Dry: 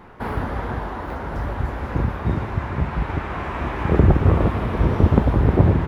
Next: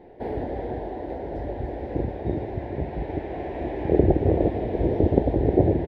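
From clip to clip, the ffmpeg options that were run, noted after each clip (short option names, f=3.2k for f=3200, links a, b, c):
-af "firequalizer=gain_entry='entry(210,0);entry(320,11);entry(740,8);entry(1200,-23);entry(1800,-1);entry(2700,-5);entry(3800,-1);entry(6800,-12)':delay=0.05:min_phase=1,volume=-8dB"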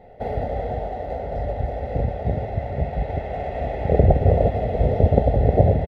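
-filter_complex "[0:a]aecho=1:1:1.5:0.89,asplit=2[a][b];[b]aeval=exprs='sgn(val(0))*max(abs(val(0))-0.00891,0)':c=same,volume=-11.5dB[c];[a][c]amix=inputs=2:normalize=0"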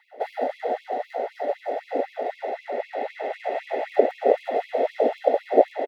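-af "afftfilt=real='re*gte(b*sr/1024,220*pow(2200/220,0.5+0.5*sin(2*PI*3.9*pts/sr)))':imag='im*gte(b*sr/1024,220*pow(2200/220,0.5+0.5*sin(2*PI*3.9*pts/sr)))':win_size=1024:overlap=0.75,volume=4dB"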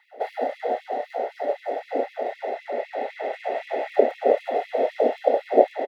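-filter_complex "[0:a]asplit=2[a][b];[b]adelay=29,volume=-9.5dB[c];[a][c]amix=inputs=2:normalize=0"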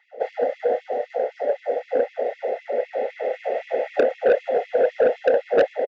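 -af "equalizer=f=315:t=o:w=0.33:g=-6,equalizer=f=500:t=o:w=0.33:g=12,equalizer=f=1k:t=o:w=0.33:g=-12,equalizer=f=4k:t=o:w=0.33:g=-7,aresample=16000,asoftclip=type=tanh:threshold=-11dB,aresample=44100"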